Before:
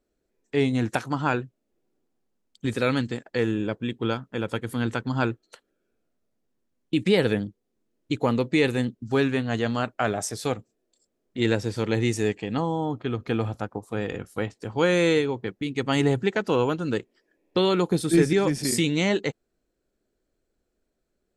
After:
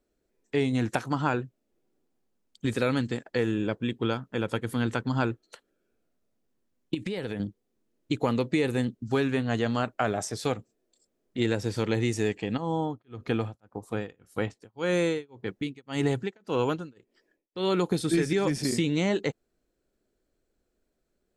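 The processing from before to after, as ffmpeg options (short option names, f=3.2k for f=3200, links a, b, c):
-filter_complex "[0:a]asettb=1/sr,asplit=3[a][b][c];[a]atrim=end=6.944[d];[b]atrim=start=6.94:end=7.4,asetpts=PTS-STARTPTS,afade=t=in:d=0.004:c=qsin,afade=t=out:st=0.456:d=0.004:c=qsin,acompressor=threshold=-28dB:ratio=12:attack=3.2:release=140:knee=1:detection=peak[e];[c]atrim=start=7.396[f];[d][e]acrossfade=d=0.004:c1=hsin:c2=qsin[g];[g][f]acrossfade=d=0.004:c1=qsin:c2=hsin,asplit=3[h][i][j];[h]afade=t=out:st=12.56:d=0.02[k];[i]tremolo=f=1.8:d=0.99,afade=t=in:st=12.56:d=0.02,afade=t=out:st=17.78:d=0.02[l];[j]afade=t=in:st=17.78:d=0.02[m];[k][l][m]amix=inputs=3:normalize=0,acrossover=split=1400|7500[n][o][p];[n]acompressor=threshold=-22dB:ratio=4[q];[o]acompressor=threshold=-34dB:ratio=4[r];[p]acompressor=threshold=-46dB:ratio=4[s];[q][r][s]amix=inputs=3:normalize=0"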